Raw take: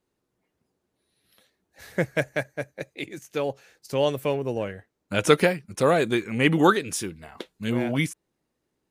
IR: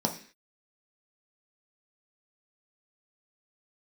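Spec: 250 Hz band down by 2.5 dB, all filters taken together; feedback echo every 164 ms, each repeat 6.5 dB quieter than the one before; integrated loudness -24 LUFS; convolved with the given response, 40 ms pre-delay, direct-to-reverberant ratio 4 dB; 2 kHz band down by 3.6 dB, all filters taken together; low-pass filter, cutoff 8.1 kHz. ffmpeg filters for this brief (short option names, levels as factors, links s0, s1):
-filter_complex "[0:a]lowpass=8100,equalizer=f=250:t=o:g=-3.5,equalizer=f=2000:t=o:g=-4.5,aecho=1:1:164|328|492|656|820|984:0.473|0.222|0.105|0.0491|0.0231|0.0109,asplit=2[s0][s1];[1:a]atrim=start_sample=2205,adelay=40[s2];[s1][s2]afir=irnorm=-1:irlink=0,volume=0.251[s3];[s0][s3]amix=inputs=2:normalize=0,volume=0.841"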